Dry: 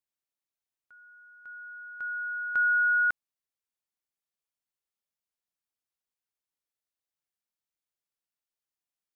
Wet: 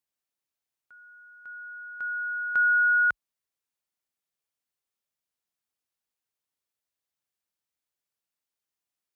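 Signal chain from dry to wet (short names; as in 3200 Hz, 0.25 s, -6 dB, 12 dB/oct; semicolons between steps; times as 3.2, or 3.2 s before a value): HPF 41 Hz 24 dB/oct; gain +2.5 dB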